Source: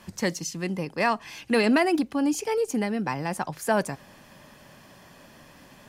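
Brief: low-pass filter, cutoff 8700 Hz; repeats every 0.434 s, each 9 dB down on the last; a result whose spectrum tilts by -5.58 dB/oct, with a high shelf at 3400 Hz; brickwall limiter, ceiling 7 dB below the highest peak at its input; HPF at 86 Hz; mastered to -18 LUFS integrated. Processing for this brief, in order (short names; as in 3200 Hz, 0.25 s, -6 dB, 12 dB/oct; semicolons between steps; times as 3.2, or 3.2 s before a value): HPF 86 Hz; LPF 8700 Hz; high shelf 3400 Hz -6.5 dB; limiter -18.5 dBFS; feedback echo 0.434 s, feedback 35%, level -9 dB; gain +10.5 dB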